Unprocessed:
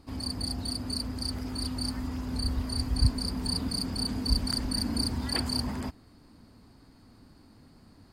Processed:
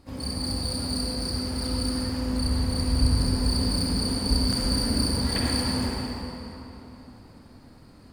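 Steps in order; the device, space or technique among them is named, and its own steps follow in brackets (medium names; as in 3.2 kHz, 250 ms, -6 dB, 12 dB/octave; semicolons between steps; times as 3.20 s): shimmer-style reverb (harmony voices +12 st -12 dB; reverberation RT60 3.5 s, pre-delay 46 ms, DRR -4 dB)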